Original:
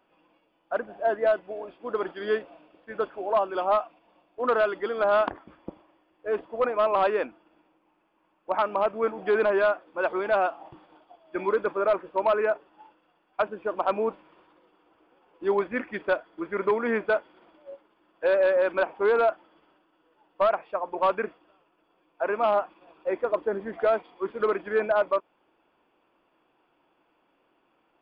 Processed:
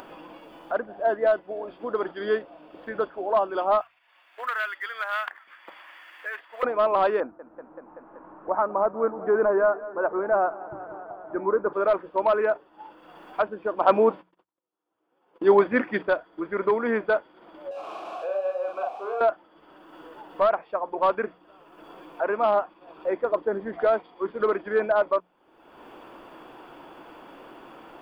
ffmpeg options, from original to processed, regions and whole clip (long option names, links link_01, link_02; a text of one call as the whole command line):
ffmpeg -i in.wav -filter_complex "[0:a]asettb=1/sr,asplit=3[link_01][link_02][link_03];[link_01]atrim=end=3.814[link_04];[link_02]atrim=start=3.81:end=6.63,asetpts=PTS-STARTPTS,afade=type=in:duration=0.004:curve=qsin,afade=type=out:start_time=2.816:duration=0.004:curve=qsin,highpass=frequency=1900:width_type=q:width=2.6,highshelf=frequency=3000:gain=-2.5,acrusher=bits=8:mode=log:mix=0:aa=0.000001[link_05];[link_03]atrim=start=6.626[link_06];[link_04][link_05]acrossfade=duration=0.004:curve1=hsin:curve2=qsin[link_07];[link_07][link_06]acrossfade=duration=0.004:curve1=qsin:curve2=hsin,asettb=1/sr,asplit=3[link_08][link_09][link_10];[link_08]atrim=end=7.204[link_11];[link_09]atrim=start=7.2:end=11.73,asetpts=PTS-STARTPTS,afade=type=in:duration=0.004:curve=qsin,afade=type=out:start_time=4.526:duration=0.004:curve=qsin,lowpass=frequency=1500:width=0.5412,lowpass=frequency=1500:width=1.3066,aecho=1:1:191|382|573|764|955:0.126|0.0692|0.0381|0.0209|0.0115,atrim=end_sample=199773[link_12];[link_10]atrim=start=11.726[link_13];[link_11][link_12]acrossfade=duration=0.004:curve1=hsin:curve2=qsin[link_14];[link_14][link_13]acrossfade=duration=0.004:curve1=qsin:curve2=hsin,asettb=1/sr,asplit=3[link_15][link_16][link_17];[link_15]atrim=end=13.814[link_18];[link_16]atrim=start=13.81:end=16.03,asetpts=PTS-STARTPTS,afade=type=in:duration=0.004:curve=qsin,afade=type=out:start_time=2.216:duration=0.004:curve=qsin,highpass=91,agate=range=-52dB:threshold=-55dB:ratio=16:release=100:detection=peak,acontrast=54[link_19];[link_17]atrim=start=16.026[link_20];[link_18][link_19]acrossfade=duration=0.004:curve1=hsin:curve2=qsin[link_21];[link_21][link_20]acrossfade=duration=0.004:curve1=qsin:curve2=hsin,asettb=1/sr,asplit=3[link_22][link_23][link_24];[link_22]atrim=end=17.714[link_25];[link_23]atrim=start=17.71:end=19.21,asetpts=PTS-STARTPTS,afade=type=in:duration=0.004:curve=qsin,afade=type=out:start_time=1.496:duration=0.004:curve=qsin,aeval=exprs='val(0)+0.5*0.0316*sgn(val(0))':channel_layout=same,asplit=3[link_26][link_27][link_28];[link_26]bandpass=frequency=730:width_type=q:width=8,volume=0dB[link_29];[link_27]bandpass=frequency=1090:width_type=q:width=8,volume=-6dB[link_30];[link_28]bandpass=frequency=2440:width_type=q:width=8,volume=-9dB[link_31];[link_29][link_30][link_31]amix=inputs=3:normalize=0,asplit=2[link_32][link_33];[link_33]adelay=41,volume=-3dB[link_34];[link_32][link_34]amix=inputs=2:normalize=0,atrim=end_sample=66150[link_35];[link_24]atrim=start=19.206[link_36];[link_25][link_35]acrossfade=duration=0.004:curve1=hsin:curve2=qsin[link_37];[link_37][link_36]acrossfade=duration=0.004:curve1=qsin:curve2=hsin,equalizer=frequency=2500:width=2.6:gain=-5.5,bandreject=frequency=60:width_type=h:width=6,bandreject=frequency=120:width_type=h:width=6,bandreject=frequency=180:width_type=h:width=6,acompressor=mode=upward:threshold=-29dB:ratio=2.5,volume=1.5dB" out.wav